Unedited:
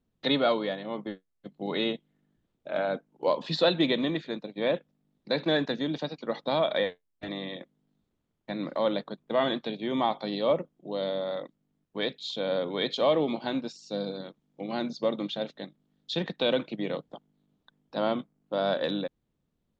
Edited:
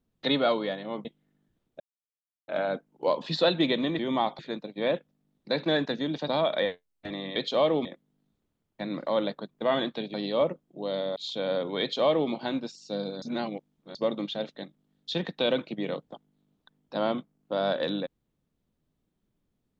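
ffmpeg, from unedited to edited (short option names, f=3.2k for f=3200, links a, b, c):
-filter_complex "[0:a]asplit=12[a][b][c][d][e][f][g][h][i][j][k][l];[a]atrim=end=1.052[m];[b]atrim=start=1.928:end=2.68,asetpts=PTS-STARTPTS,afade=t=out:st=0.748:d=0.004:c=hsin,apad=pad_dur=0.68[n];[c]atrim=start=2.68:end=4.192,asetpts=PTS-STARTPTS,afade=t=in:d=0.004:c=hsin[o];[d]atrim=start=9.828:end=10.232[p];[e]atrim=start=4.188:end=6.082[q];[f]atrim=start=6.458:end=7.542[r];[g]atrim=start=12.818:end=13.312[s];[h]atrim=start=7.538:end=9.832[t];[i]atrim=start=10.228:end=11.252[u];[j]atrim=start=12.168:end=14.232[v];[k]atrim=start=14.228:end=14.962,asetpts=PTS-STARTPTS,areverse[w];[l]atrim=start=14.958[x];[n][o]concat=n=2:v=0:a=1[y];[m][y]acrossfade=d=0.004:c1=hsin:c2=hsin[z];[z][p]acrossfade=d=0.004:c1=hsin:c2=hsin[aa];[aa][q]acrossfade=d=0.004:c1=hsin:c2=hsin[ab];[ab][r]acrossfade=d=0.004:c1=hsin:c2=hsin[ac];[ac][s]acrossfade=d=0.004:c1=hsin:c2=hsin[ad];[ad][t]acrossfade=d=0.004:c1=hsin:c2=hsin[ae];[ae][u]acrossfade=d=0.004:c1=hsin:c2=hsin[af];[af][v]acrossfade=d=0.004:c1=hsin:c2=hsin[ag];[ag][w]acrossfade=d=0.004:c1=hsin:c2=hsin[ah];[ah][x]acrossfade=d=0.004:c1=hsin:c2=hsin"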